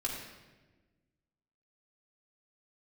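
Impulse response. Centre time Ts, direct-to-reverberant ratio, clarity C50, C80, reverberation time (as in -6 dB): 55 ms, -4.0 dB, 2.5 dB, 4.0 dB, 1.3 s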